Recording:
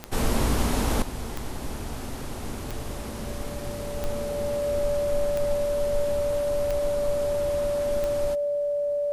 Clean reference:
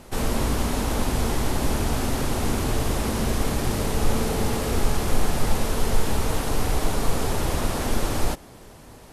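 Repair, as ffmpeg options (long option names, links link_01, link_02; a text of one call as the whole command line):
ffmpeg -i in.wav -af "adeclick=threshold=4,bandreject=frequency=580:width=30,asetnsamples=nb_out_samples=441:pad=0,asendcmd='1.02 volume volume 10dB',volume=0dB" out.wav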